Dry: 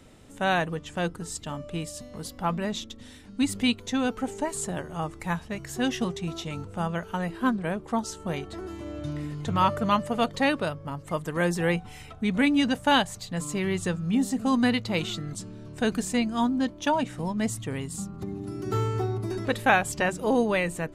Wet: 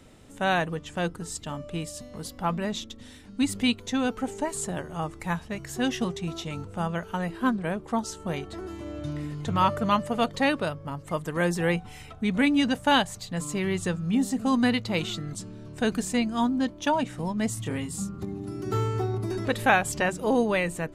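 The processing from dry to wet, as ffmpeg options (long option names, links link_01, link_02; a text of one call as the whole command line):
ffmpeg -i in.wav -filter_complex "[0:a]asettb=1/sr,asplit=3[link_01][link_02][link_03];[link_01]atrim=end=17.544[link_04];[link_02]atrim=start=17.54:end=18.25,asetpts=PTS-STARTPTS,afade=type=in:duration=0.004:curve=qsin,afade=type=out:start_time=0.706:duration=0.004:curve=qsin,asplit=2[link_05][link_06];[link_06]adelay=26,volume=-4dB[link_07];[link_05][link_07]amix=inputs=2:normalize=0,atrim=end_sample=31311[link_08];[link_03]atrim=start=18.246[link_09];[link_04][link_08]acrossfade=duration=0.004:curve1=hsin:curve2=qsin[link_10];[link_10][link_09]acrossfade=duration=0.004:curve1=qsin:curve2=hsin,asettb=1/sr,asplit=3[link_11][link_12][link_13];[link_11]atrim=end=19.144[link_14];[link_12]atrim=start=19.14:end=19.98,asetpts=PTS-STARTPTS,afade=type=in:duration=0.004:curve=qsin,afade=type=out:start_time=0.836:duration=0.004:curve=qsin,acompressor=mode=upward:threshold=-25dB:ratio=2.5:attack=3.2:release=140:knee=2.83:detection=peak[link_15];[link_13]atrim=start=19.976[link_16];[link_14][link_15]acrossfade=duration=0.004:curve1=hsin:curve2=qsin[link_17];[link_17][link_16]acrossfade=duration=0.004:curve1=qsin:curve2=hsin" out.wav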